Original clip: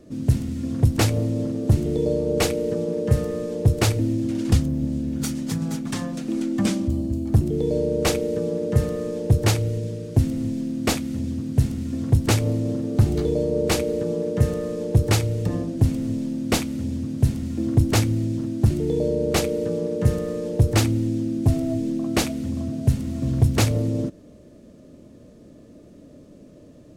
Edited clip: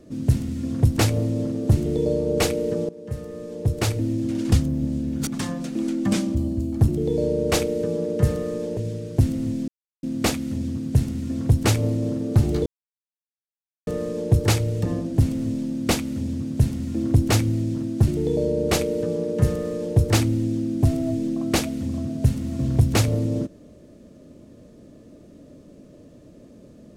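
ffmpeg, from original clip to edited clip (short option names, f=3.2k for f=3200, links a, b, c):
-filter_complex "[0:a]asplit=7[a][b][c][d][e][f][g];[a]atrim=end=2.89,asetpts=PTS-STARTPTS,afade=t=out:st=2.886:d=0.004:c=hsin:silence=0.133352[h];[b]atrim=start=2.89:end=5.272,asetpts=PTS-STARTPTS,afade=t=in:d=1.48:silence=0.133352[i];[c]atrim=start=5.798:end=9.302[j];[d]atrim=start=9.748:end=10.66,asetpts=PTS-STARTPTS,afade=t=out:st=0.908:d=0.004:c=hsin,apad=pad_dur=0.35[k];[e]atrim=start=10.66:end=13.29,asetpts=PTS-STARTPTS,afade=t=in:d=0.004:c=hsin,afade=t=out:st=2.626:d=0.004:c=hsin[l];[f]atrim=start=13.29:end=14.5,asetpts=PTS-STARTPTS,volume=0[m];[g]atrim=start=14.5,asetpts=PTS-STARTPTS,afade=t=in:d=0.004:c=hsin[n];[h][i]concat=n=2:v=0:a=1[o];[o][j]acrossfade=d=0.004:c1=hsin:c2=hsin[p];[k][l][m][n]concat=n=4:v=0:a=1[q];[p][q]acrossfade=d=0.004:c1=hsin:c2=hsin"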